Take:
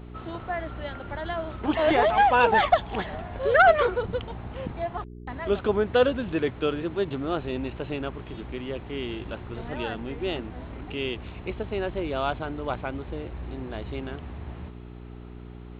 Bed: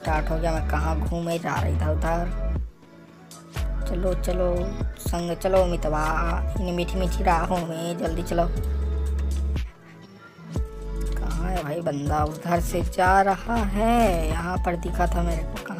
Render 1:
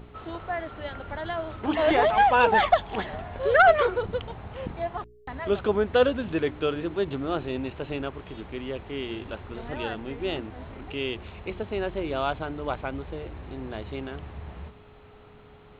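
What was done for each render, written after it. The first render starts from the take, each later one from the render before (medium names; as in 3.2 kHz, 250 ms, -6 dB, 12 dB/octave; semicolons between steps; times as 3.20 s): de-hum 60 Hz, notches 6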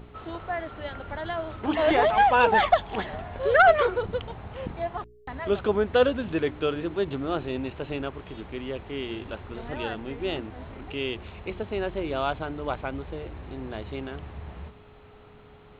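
no audible change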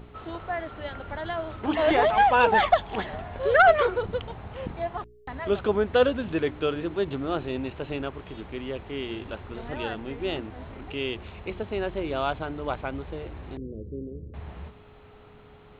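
13.57–14.34 s: elliptic low-pass 500 Hz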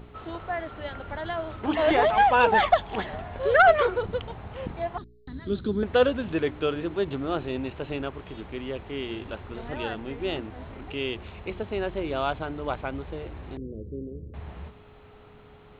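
4.98–5.83 s: FFT filter 110 Hz 0 dB, 230 Hz +5 dB, 340 Hz 0 dB, 680 Hz -20 dB, 1 kHz -16 dB, 1.6 kHz -9 dB, 2.7 kHz -16 dB, 4 kHz +6 dB, 6.3 kHz -12 dB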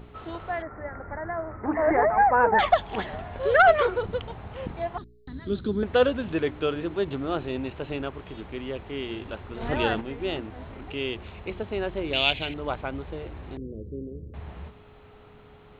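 0.62–2.59 s: elliptic low-pass 2 kHz; 9.61–10.01 s: gain +7 dB; 12.13–12.54 s: resonant high shelf 1.8 kHz +11.5 dB, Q 3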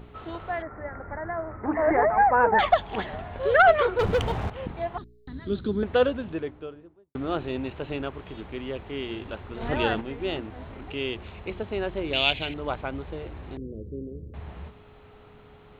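3.99–4.50 s: waveshaping leveller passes 3; 5.76–7.15 s: studio fade out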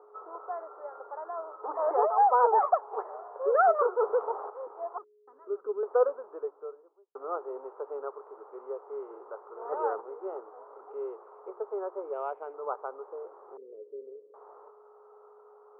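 Chebyshev band-pass 410–1300 Hz, order 4; peaking EQ 640 Hz -6 dB 0.43 oct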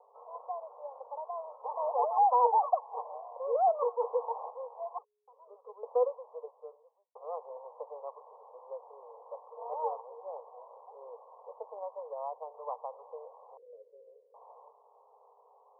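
Chebyshev band-pass 470–1100 Hz, order 5; dynamic bell 590 Hz, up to -5 dB, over -39 dBFS, Q 2.3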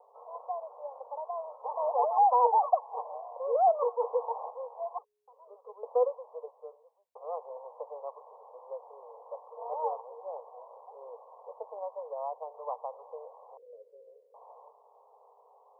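peaking EQ 660 Hz +3 dB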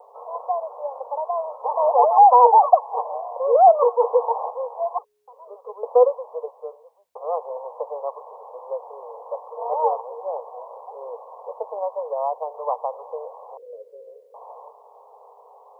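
trim +11.5 dB; peak limiter -2 dBFS, peak gain reduction 1 dB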